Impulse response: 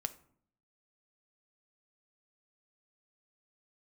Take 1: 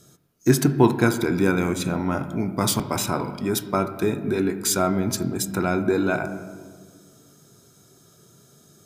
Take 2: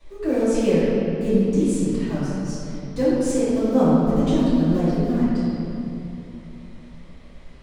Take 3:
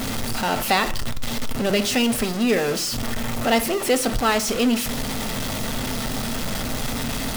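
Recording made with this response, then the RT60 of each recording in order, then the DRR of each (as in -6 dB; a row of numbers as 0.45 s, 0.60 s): 3; 1.8 s, 2.9 s, 0.60 s; 8.5 dB, -16.0 dB, 9.5 dB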